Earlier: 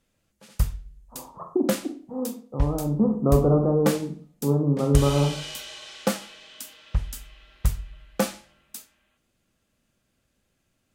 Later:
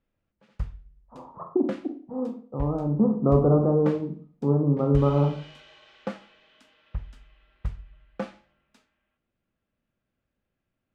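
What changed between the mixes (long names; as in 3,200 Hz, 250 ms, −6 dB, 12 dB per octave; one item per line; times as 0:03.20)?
background −8.0 dB
master: add low-pass filter 2,400 Hz 12 dB per octave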